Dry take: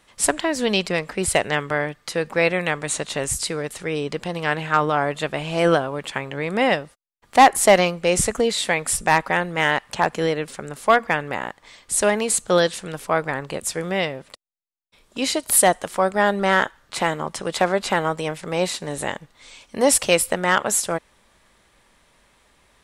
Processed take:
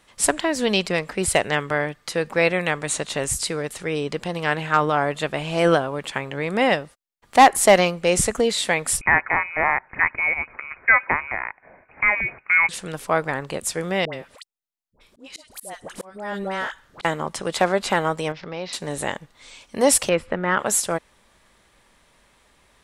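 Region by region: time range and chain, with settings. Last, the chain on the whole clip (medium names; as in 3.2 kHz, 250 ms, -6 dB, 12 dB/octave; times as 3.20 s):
9.01–12.69 s: high-pass 260 Hz + frequency inversion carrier 2.7 kHz
14.05–17.05 s: compression 2:1, threshold -28 dBFS + phase dispersion highs, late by 83 ms, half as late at 920 Hz + slow attack 396 ms
18.32–18.73 s: compression 2:1, threshold -32 dBFS + elliptic low-pass 5.4 kHz, stop band 50 dB
20.09–20.59 s: companding laws mixed up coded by mu + low-pass 1.8 kHz + peaking EQ 730 Hz -5.5 dB 0.9 oct
whole clip: none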